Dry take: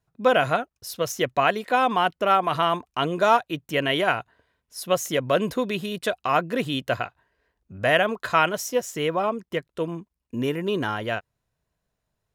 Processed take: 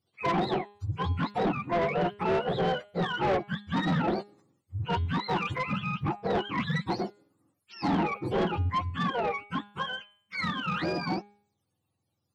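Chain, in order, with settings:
frequency axis turned over on the octave scale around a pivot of 720 Hz
soft clipping −22.5 dBFS, distortion −8 dB
hum removal 204.7 Hz, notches 21

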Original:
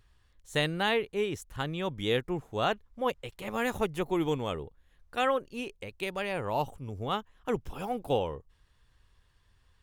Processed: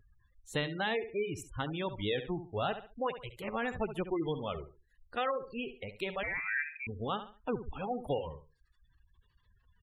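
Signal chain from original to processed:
spectral magnitudes quantised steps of 15 dB
reverb reduction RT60 0.79 s
repeating echo 69 ms, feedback 27%, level −12 dB
downward compressor 2 to 1, threshold −32 dBFS, peak gain reduction 5.5 dB
gate on every frequency bin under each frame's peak −25 dB strong
0:06.23–0:06.87: voice inversion scrambler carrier 2,500 Hz

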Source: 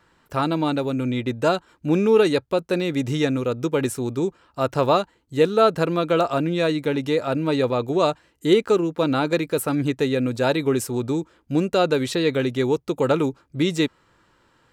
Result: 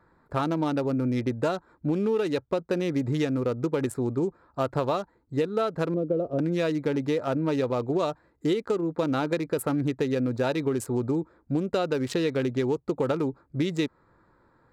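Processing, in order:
adaptive Wiener filter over 15 samples
0:05.94–0:06.39: drawn EQ curve 550 Hz 0 dB, 830 Hz −20 dB, 2,400 Hz −27 dB
downward compressor 10 to 1, threshold −22 dBFS, peak gain reduction 11.5 dB

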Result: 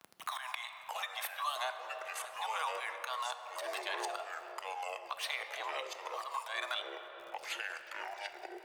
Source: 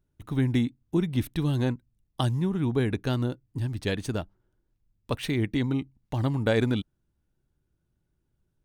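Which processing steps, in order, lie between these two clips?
downward expander −58 dBFS
Chebyshev high-pass filter 630 Hz, order 8
parametric band 1,100 Hz +11.5 dB 0.29 octaves
downward compressor 16 to 1, threshold −40 dBFS, peak gain reduction 19.5 dB
volume swells 140 ms
surface crackle 34 per second −62 dBFS
phase shifter 0.39 Hz, delay 2 ms, feedback 45%
delay with pitch and tempo change per echo 524 ms, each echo −5 semitones, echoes 2, each echo −6 dB
on a send at −8.5 dB: convolution reverb RT60 2.3 s, pre-delay 3 ms
on the sum: multiband upward and downward compressor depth 70%
level +9.5 dB

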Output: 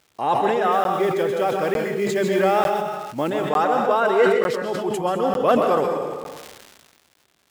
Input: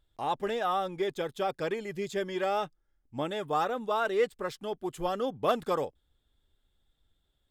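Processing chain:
0:00.72–0:03.30: one scale factor per block 5 bits
parametric band 5,200 Hz −3.5 dB 1.9 octaves
notch filter 3,500 Hz, Q 12
dense smooth reverb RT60 0.74 s, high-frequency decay 1×, pre-delay 115 ms, DRR 2.5 dB
speech leveller 2 s
surface crackle 280 per second −51 dBFS
high-pass filter 150 Hz 12 dB per octave
high-shelf EQ 8,300 Hz −5 dB
regular buffer underruns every 0.90 s, samples 512, zero, from 0:00.84
level that may fall only so fast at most 35 dB per second
level +7.5 dB

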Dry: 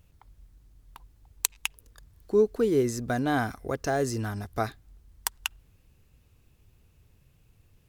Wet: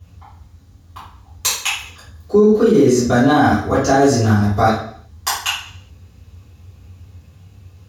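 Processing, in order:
mains-hum notches 50/100/150/200/250/300 Hz
convolution reverb RT60 0.60 s, pre-delay 3 ms, DRR −14.5 dB
boost into a limiter +1.5 dB
level −3 dB

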